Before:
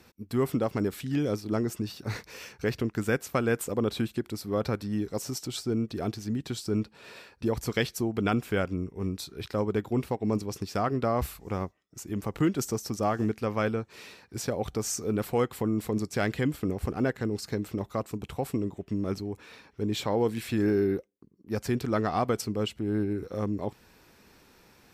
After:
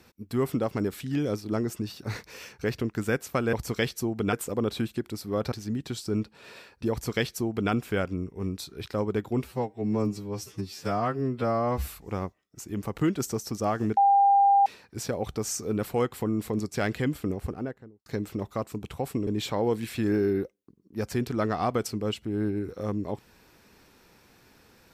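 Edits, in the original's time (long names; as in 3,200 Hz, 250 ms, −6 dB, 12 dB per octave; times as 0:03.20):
0:04.72–0:06.12: remove
0:07.51–0:08.31: duplicate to 0:03.53
0:10.05–0:11.26: time-stretch 2×
0:13.36–0:14.05: beep over 798 Hz −16 dBFS
0:16.61–0:17.45: fade out and dull
0:18.66–0:19.81: remove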